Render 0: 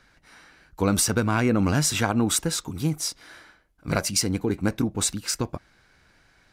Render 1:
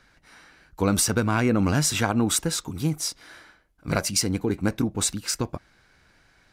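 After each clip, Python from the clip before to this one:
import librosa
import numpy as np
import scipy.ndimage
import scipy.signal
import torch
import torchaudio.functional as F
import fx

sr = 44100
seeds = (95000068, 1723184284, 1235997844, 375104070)

y = x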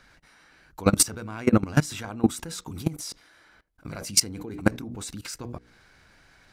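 y = fx.hum_notches(x, sr, base_hz=60, count=8)
y = fx.level_steps(y, sr, step_db=21)
y = F.gain(torch.from_numpy(y), 6.0).numpy()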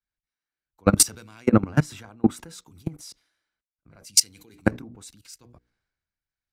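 y = fx.band_widen(x, sr, depth_pct=100)
y = F.gain(torch.from_numpy(y), -6.0).numpy()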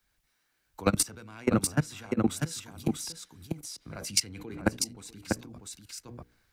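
y = x + 10.0 ** (-7.5 / 20.0) * np.pad(x, (int(643 * sr / 1000.0), 0))[:len(x)]
y = fx.band_squash(y, sr, depth_pct=70)
y = F.gain(torch.from_numpy(y), -4.0).numpy()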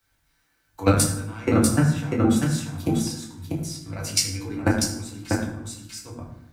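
y = fx.rev_fdn(x, sr, rt60_s=0.83, lf_ratio=1.35, hf_ratio=0.6, size_ms=61.0, drr_db=-3.5)
y = F.gain(torch.from_numpy(y), 1.5).numpy()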